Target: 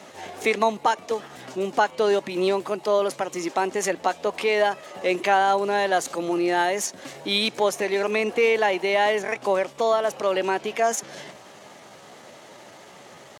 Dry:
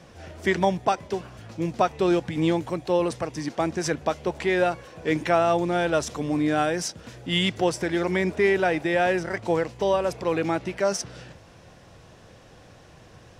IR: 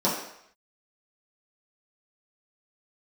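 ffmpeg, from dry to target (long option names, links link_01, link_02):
-filter_complex "[0:a]highpass=260,asplit=2[link_01][link_02];[link_02]acompressor=threshold=-36dB:ratio=6,volume=2dB[link_03];[link_01][link_03]amix=inputs=2:normalize=0,asetrate=50951,aresample=44100,atempo=0.865537"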